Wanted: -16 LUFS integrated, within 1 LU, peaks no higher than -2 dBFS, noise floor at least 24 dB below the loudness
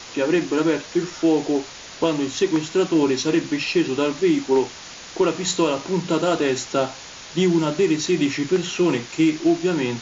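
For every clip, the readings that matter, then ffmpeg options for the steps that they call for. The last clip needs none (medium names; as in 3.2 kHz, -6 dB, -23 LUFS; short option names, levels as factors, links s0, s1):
noise floor -39 dBFS; noise floor target -46 dBFS; loudness -21.5 LUFS; peak level -9.0 dBFS; loudness target -16.0 LUFS
-> -af "afftdn=nr=7:nf=-39"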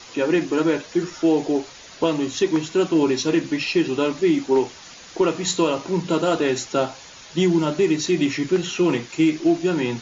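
noise floor -43 dBFS; noise floor target -46 dBFS
-> -af "afftdn=nr=6:nf=-43"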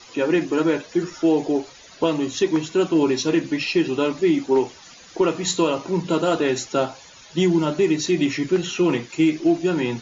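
noise floor -46 dBFS; loudness -21.5 LUFS; peak level -9.5 dBFS; loudness target -16.0 LUFS
-> -af "volume=1.88"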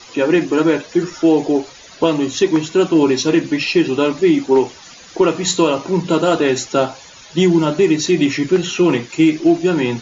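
loudness -16.0 LUFS; peak level -4.0 dBFS; noise floor -41 dBFS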